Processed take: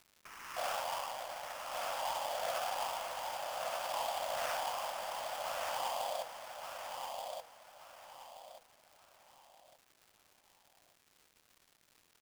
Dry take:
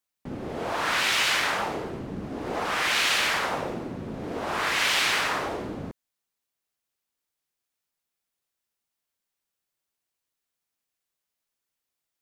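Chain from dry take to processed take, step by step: low-pass that closes with the level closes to 370 Hz, closed at -24 dBFS; in parallel at 0 dB: peak limiter -30.5 dBFS, peak gain reduction 10.5 dB; on the sum: three bands offset in time mids, lows, highs 310/460 ms, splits 650/5900 Hz; frequency shift +470 Hz; sample-rate reducer 4 kHz, jitter 20%; crackle 220 per s -43 dBFS; on a send: feedback delay 1178 ms, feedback 31%, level -4.5 dB; on the sum: trim -7.5 dB

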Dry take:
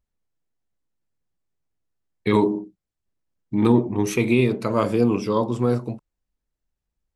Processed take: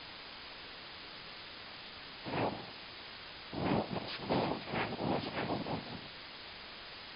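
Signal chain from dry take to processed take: spectral sustain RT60 0.44 s; gate -39 dBFS, range -24 dB; reverb removal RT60 0.57 s; high-pass 150 Hz 24 dB/octave; peaking EQ 530 Hz -3.5 dB 0.77 oct; compression 5:1, threshold -25 dBFS, peak gain reduction 10.5 dB; slow attack 170 ms; upward compressor, threshold -32 dBFS; harmony voices +4 st -1 dB; noise-vocoded speech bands 4; word length cut 6-bit, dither triangular; brick-wall FIR low-pass 5.1 kHz; trim -6.5 dB

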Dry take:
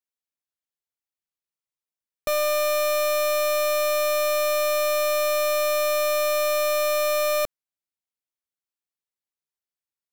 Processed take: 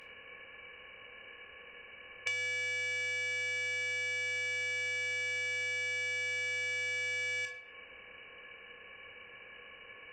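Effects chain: spectral levelling over time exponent 0.4; frequency inversion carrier 2.9 kHz; sine folder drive 5 dB, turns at -14.5 dBFS; on a send at -2.5 dB: reverberation RT60 0.45 s, pre-delay 14 ms; on the sum: compression 8:1, threshold -30 dBFS, peak gain reduction 16 dB; trim -4.5 dB

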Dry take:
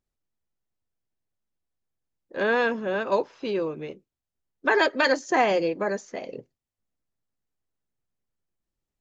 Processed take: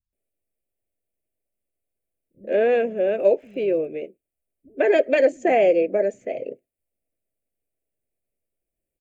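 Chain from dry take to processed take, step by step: 2.66–3.74 s: crackle 40 per s -52 dBFS; FFT filter 180 Hz 0 dB, 650 Hz +10 dB, 1 kHz -20 dB, 2.4 kHz +5 dB, 3.9 kHz -13 dB, 5.5 kHz -18 dB, 8.6 kHz +7 dB; bands offset in time lows, highs 130 ms, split 160 Hz; trim -1 dB

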